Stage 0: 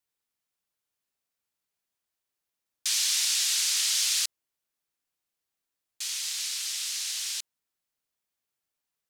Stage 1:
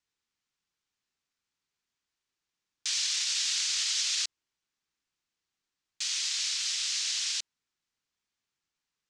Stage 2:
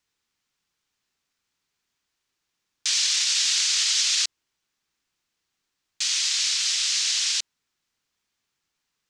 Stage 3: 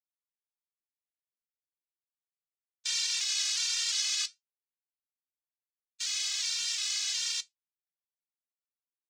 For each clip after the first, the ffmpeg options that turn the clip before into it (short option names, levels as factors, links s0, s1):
-af "lowpass=f=7100:w=0.5412,lowpass=f=7100:w=1.3066,equalizer=f=610:w=1.7:g=-8,alimiter=limit=0.0668:level=0:latency=1:release=37,volume=1.41"
-af "acontrast=89"
-af "aeval=exprs='sgn(val(0))*max(abs(val(0))-0.00422,0)':c=same,flanger=delay=3.9:depth=6:regen=-74:speed=1.3:shape=triangular,afftfilt=real='re*gt(sin(2*PI*1.4*pts/sr)*(1-2*mod(floor(b*sr/1024/220),2)),0)':imag='im*gt(sin(2*PI*1.4*pts/sr)*(1-2*mod(floor(b*sr/1024/220),2)),0)':win_size=1024:overlap=0.75"